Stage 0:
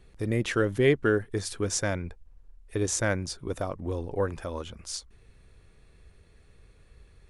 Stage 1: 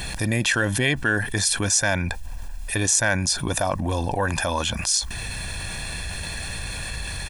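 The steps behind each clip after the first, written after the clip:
spectral tilt +2.5 dB per octave
comb filter 1.2 ms, depth 70%
envelope flattener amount 70%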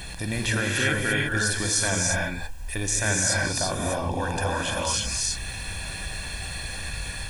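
reverb whose tail is shaped and stops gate 370 ms rising, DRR −2.5 dB
level −6.5 dB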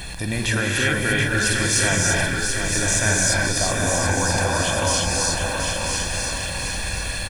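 in parallel at −5 dB: soft clipping −19 dBFS, distortion −17 dB
on the sum: single-tap delay 992 ms −6 dB
feedback echo at a low word length 730 ms, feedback 55%, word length 8 bits, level −6.5 dB

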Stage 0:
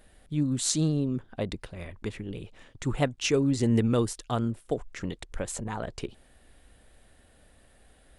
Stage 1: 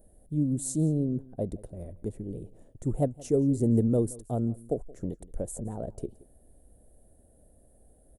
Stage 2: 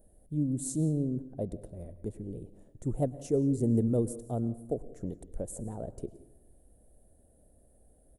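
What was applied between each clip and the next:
drawn EQ curve 650 Hz 0 dB, 1,100 Hz −20 dB, 1,600 Hz −22 dB, 2,500 Hz −29 dB, 5,000 Hz −20 dB, 9,800 Hz +1 dB; single-tap delay 173 ms −21.5 dB
convolution reverb RT60 0.90 s, pre-delay 94 ms, DRR 17 dB; level −3 dB

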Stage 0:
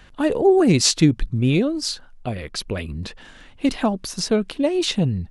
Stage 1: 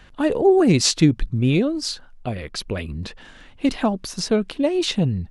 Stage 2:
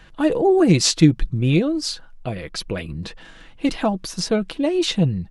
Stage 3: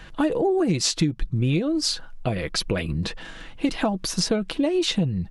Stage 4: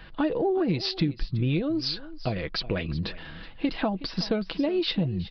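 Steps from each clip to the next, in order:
high-shelf EQ 7,900 Hz −4.5 dB
comb filter 6.1 ms, depth 40%
downward compressor 6 to 1, threshold −24 dBFS, peak gain reduction 15.5 dB; level +4.5 dB
single-tap delay 370 ms −17 dB; downsampling to 11,025 Hz; level −3.5 dB

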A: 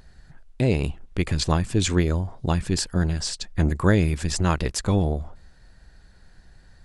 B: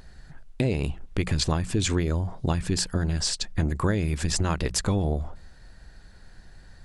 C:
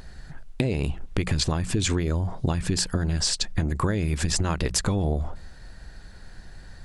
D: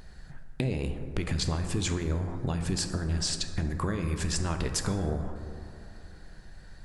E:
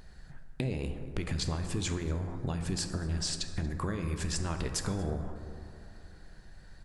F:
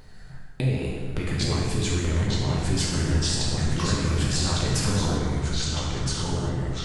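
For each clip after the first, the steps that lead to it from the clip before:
downward compressor 6 to 1, threshold −23 dBFS, peak gain reduction 10 dB; mains-hum notches 60/120/180 Hz; level +3 dB
downward compressor, threshold −25 dBFS, peak gain reduction 7 dB; level +5 dB
dense smooth reverb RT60 2.8 s, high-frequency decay 0.3×, DRR 6 dB; level −6 dB
single-tap delay 233 ms −23.5 dB; level −3.5 dB
delay with pitch and tempo change per echo 736 ms, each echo −2 semitones, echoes 3; reverb whose tail is shaped and stops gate 420 ms falling, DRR −2.5 dB; level +3 dB

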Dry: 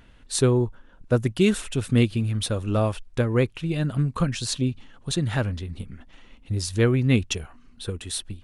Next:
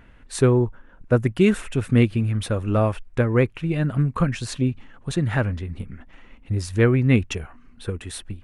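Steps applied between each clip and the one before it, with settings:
high shelf with overshoot 2,800 Hz −7 dB, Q 1.5
level +2.5 dB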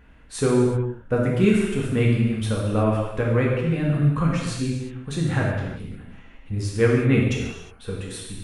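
convolution reverb, pre-delay 3 ms, DRR −3.5 dB
level −5 dB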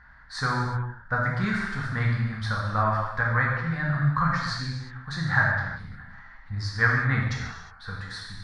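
drawn EQ curve 150 Hz 0 dB, 400 Hz −18 dB, 820 Hz +7 dB, 1,800 Hz +15 dB, 2,700 Hz −14 dB, 4,500 Hz +11 dB, 7,600 Hz −10 dB, 11,000 Hz −16 dB
level −4 dB

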